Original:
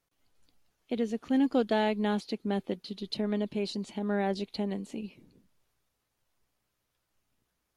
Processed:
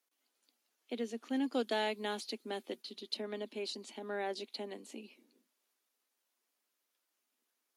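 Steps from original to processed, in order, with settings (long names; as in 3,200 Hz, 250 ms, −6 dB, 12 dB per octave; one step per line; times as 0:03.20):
0:01.53–0:02.82: high-shelf EQ 4,300 Hz +6 dB
Chebyshev high-pass filter 230 Hz, order 5
spectral tilt +1.5 dB per octave
level −5 dB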